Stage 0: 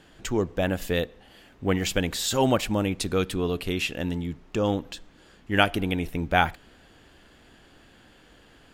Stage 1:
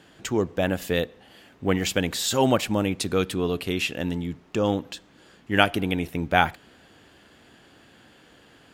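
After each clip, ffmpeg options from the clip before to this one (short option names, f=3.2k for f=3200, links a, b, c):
-af "highpass=90,volume=1.5dB"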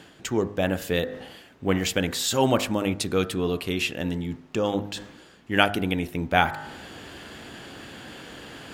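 -af "bandreject=f=51.01:t=h:w=4,bandreject=f=102.02:t=h:w=4,bandreject=f=153.03:t=h:w=4,bandreject=f=204.04:t=h:w=4,bandreject=f=255.05:t=h:w=4,bandreject=f=306.06:t=h:w=4,bandreject=f=357.07:t=h:w=4,bandreject=f=408.08:t=h:w=4,bandreject=f=459.09:t=h:w=4,bandreject=f=510.1:t=h:w=4,bandreject=f=561.11:t=h:w=4,bandreject=f=612.12:t=h:w=4,bandreject=f=663.13:t=h:w=4,bandreject=f=714.14:t=h:w=4,bandreject=f=765.15:t=h:w=4,bandreject=f=816.16:t=h:w=4,bandreject=f=867.17:t=h:w=4,bandreject=f=918.18:t=h:w=4,bandreject=f=969.19:t=h:w=4,bandreject=f=1.0202k:t=h:w=4,bandreject=f=1.07121k:t=h:w=4,bandreject=f=1.12222k:t=h:w=4,bandreject=f=1.17323k:t=h:w=4,bandreject=f=1.22424k:t=h:w=4,bandreject=f=1.27525k:t=h:w=4,bandreject=f=1.32626k:t=h:w=4,bandreject=f=1.37727k:t=h:w=4,bandreject=f=1.42828k:t=h:w=4,bandreject=f=1.47929k:t=h:w=4,bandreject=f=1.5303k:t=h:w=4,bandreject=f=1.58131k:t=h:w=4,bandreject=f=1.63232k:t=h:w=4,bandreject=f=1.68333k:t=h:w=4,bandreject=f=1.73434k:t=h:w=4,bandreject=f=1.78535k:t=h:w=4,bandreject=f=1.83636k:t=h:w=4,bandreject=f=1.88737k:t=h:w=4,bandreject=f=1.93838k:t=h:w=4,bandreject=f=1.98939k:t=h:w=4,bandreject=f=2.0404k:t=h:w=4,areverse,acompressor=mode=upward:threshold=-29dB:ratio=2.5,areverse"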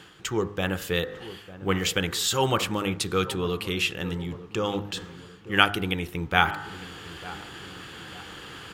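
-filter_complex "[0:a]equalizer=f=250:t=o:w=0.33:g=-12,equalizer=f=630:t=o:w=0.33:g=-11,equalizer=f=1.25k:t=o:w=0.33:g=6,equalizer=f=3.15k:t=o:w=0.33:g=3,asplit=2[a][b];[b]adelay=900,lowpass=f=850:p=1,volume=-14.5dB,asplit=2[c][d];[d]adelay=900,lowpass=f=850:p=1,volume=0.52,asplit=2[e][f];[f]adelay=900,lowpass=f=850:p=1,volume=0.52,asplit=2[g][h];[h]adelay=900,lowpass=f=850:p=1,volume=0.52,asplit=2[i][j];[j]adelay=900,lowpass=f=850:p=1,volume=0.52[k];[a][c][e][g][i][k]amix=inputs=6:normalize=0"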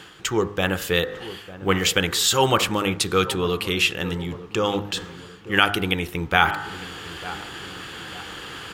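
-af "equalizer=f=130:t=o:w=2.7:g=-3.5,alimiter=level_in=7dB:limit=-1dB:release=50:level=0:latency=1,volume=-1dB"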